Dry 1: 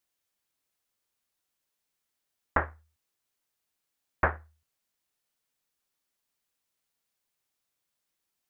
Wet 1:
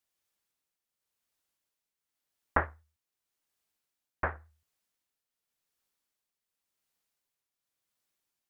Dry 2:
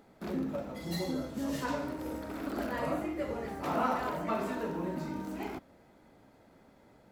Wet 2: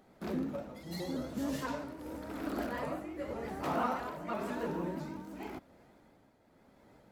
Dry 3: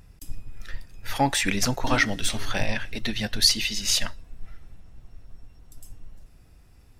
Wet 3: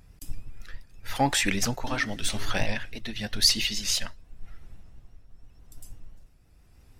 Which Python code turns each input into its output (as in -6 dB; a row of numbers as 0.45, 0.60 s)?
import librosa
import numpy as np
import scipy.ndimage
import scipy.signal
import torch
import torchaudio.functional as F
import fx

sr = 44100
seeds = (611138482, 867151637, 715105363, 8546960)

y = fx.tremolo_shape(x, sr, shape='triangle', hz=0.9, depth_pct=60)
y = fx.vibrato_shape(y, sr, shape='saw_up', rate_hz=6.0, depth_cents=100.0)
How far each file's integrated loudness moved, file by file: -3.0, -3.0, -2.5 LU